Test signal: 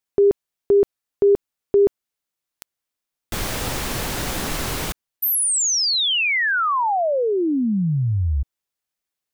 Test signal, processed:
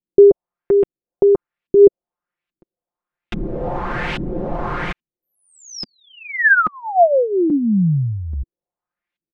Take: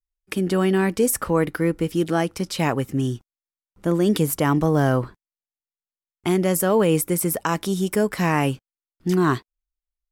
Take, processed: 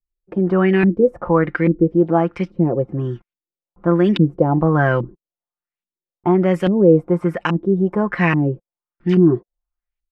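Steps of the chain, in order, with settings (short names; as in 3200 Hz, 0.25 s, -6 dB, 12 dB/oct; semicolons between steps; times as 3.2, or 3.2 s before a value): LFO low-pass saw up 1.2 Hz 240–2900 Hz; comb 5.7 ms, depth 56%; gain +1 dB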